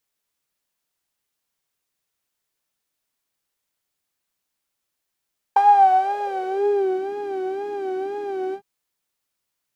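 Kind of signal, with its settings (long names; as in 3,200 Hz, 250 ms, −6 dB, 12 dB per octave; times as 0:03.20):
subtractive patch with vibrato G5, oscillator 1 saw, sub −11.5 dB, noise −10 dB, filter bandpass, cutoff 160 Hz, Q 7, filter envelope 2.5 octaves, filter decay 1.45 s, attack 1.5 ms, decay 0.06 s, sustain −4 dB, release 0.08 s, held 2.98 s, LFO 2 Hz, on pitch 83 cents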